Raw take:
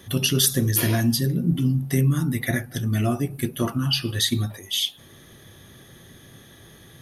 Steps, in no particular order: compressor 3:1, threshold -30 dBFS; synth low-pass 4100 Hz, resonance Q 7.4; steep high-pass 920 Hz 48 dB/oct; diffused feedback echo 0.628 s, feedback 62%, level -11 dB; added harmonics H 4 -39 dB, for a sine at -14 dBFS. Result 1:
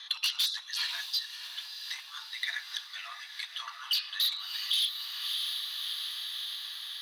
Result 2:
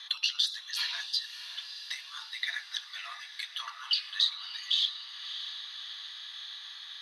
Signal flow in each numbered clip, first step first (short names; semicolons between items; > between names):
synth low-pass > added harmonics > diffused feedback echo > compressor > steep high-pass; synth low-pass > compressor > diffused feedback echo > added harmonics > steep high-pass